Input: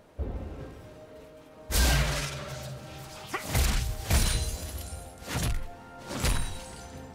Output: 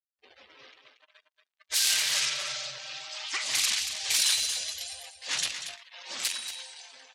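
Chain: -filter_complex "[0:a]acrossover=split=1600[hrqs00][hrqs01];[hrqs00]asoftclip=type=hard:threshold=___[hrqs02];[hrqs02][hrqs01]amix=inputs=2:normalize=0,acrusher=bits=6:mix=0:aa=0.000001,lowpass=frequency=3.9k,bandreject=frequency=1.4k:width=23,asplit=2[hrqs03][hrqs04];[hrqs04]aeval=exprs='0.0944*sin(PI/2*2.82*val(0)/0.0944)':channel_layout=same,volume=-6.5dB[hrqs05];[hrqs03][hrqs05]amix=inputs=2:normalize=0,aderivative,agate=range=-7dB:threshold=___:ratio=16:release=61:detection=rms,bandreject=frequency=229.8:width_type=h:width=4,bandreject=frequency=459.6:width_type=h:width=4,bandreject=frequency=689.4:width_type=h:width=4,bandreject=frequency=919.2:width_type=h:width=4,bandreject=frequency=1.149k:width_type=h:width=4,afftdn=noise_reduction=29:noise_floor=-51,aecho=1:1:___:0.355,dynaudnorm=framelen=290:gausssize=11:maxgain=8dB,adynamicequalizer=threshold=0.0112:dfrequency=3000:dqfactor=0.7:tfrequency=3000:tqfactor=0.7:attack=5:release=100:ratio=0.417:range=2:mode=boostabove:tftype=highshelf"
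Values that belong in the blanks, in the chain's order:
-33dB, -50dB, 232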